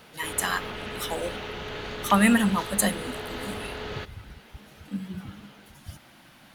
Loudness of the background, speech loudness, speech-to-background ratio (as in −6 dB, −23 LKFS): −35.5 LKFS, −26.5 LKFS, 9.0 dB